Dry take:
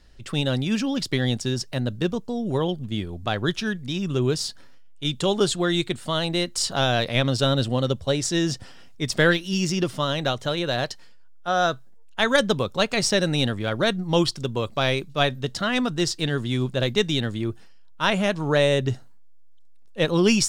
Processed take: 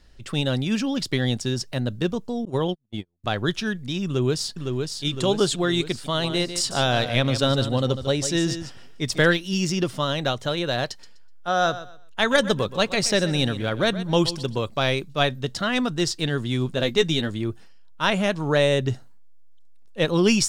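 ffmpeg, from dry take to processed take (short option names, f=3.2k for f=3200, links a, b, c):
-filter_complex "[0:a]asettb=1/sr,asplit=3[a][b][c];[a]atrim=end=2.454[d];[b]atrim=start=2.45:end=3.24,asetpts=PTS-STARTPTS,afade=t=in:d=0.004:c=qsin,afade=t=out:st=0.786:d=0.004:c=qsin,agate=range=-44dB:threshold=-26dB:ratio=16:release=100:detection=peak[e];[c]atrim=start=3.236[f];[d][e]acrossfade=d=0.004:c1=hsin:c2=qsin[g];[g][f]acrossfade=d=0.004:c1=qsin:c2=hsin,asplit=2[h][i];[i]afade=t=in:st=4.05:d=0.01,afade=t=out:st=5.04:d=0.01,aecho=0:1:510|1020|1530|2040|2550|3060|3570|4080|4590:0.595662|0.357397|0.214438|0.128663|0.0771978|0.0463187|0.0277912|0.0166747|0.0100048[j];[h][j]amix=inputs=2:normalize=0,asplit=3[k][l][m];[k]afade=t=out:st=6.22:d=0.02[n];[l]aecho=1:1:148:0.299,afade=t=in:st=6.22:d=0.02,afade=t=out:st=9.24:d=0.02[o];[m]afade=t=in:st=9.24:d=0.02[p];[n][o][p]amix=inputs=3:normalize=0,asettb=1/sr,asplit=3[q][r][s];[q]atrim=end=10.884[t];[r]atrim=start=10.88:end=14.59,asetpts=PTS-STARTPTS,afade=t=in:d=0.004:c=qsin,afade=t=out:st=3.706:d=0.004:c=qsin,aecho=1:1:125|250|375:0.188|0.0471|0.0118,atrim=end_sample=163611[u];[s]atrim=start=14.586[v];[t][u]acrossfade=d=0.004:c1=hsin:c2=qsin[w];[w][v]acrossfade=d=0.004:c1=qsin:c2=hsin,asettb=1/sr,asplit=3[x][y][z];[x]atrim=end=16.674[aa];[y]atrim=start=16.67:end=17.3,asetpts=PTS-STARTPTS,afade=t=in:d=0.004:c=qsin,afade=t=out:st=0.626:d=0.004:c=qsin,asplit=2[ab][ac];[ac]adelay=12,volume=-7dB[ad];[ab][ad]amix=inputs=2:normalize=0,atrim=end_sample=27783[ae];[z]atrim=start=17.296[af];[aa][ae]acrossfade=d=0.004:c1=hsin:c2=qsin[ag];[ag][af]acrossfade=d=0.004:c1=qsin:c2=hsin"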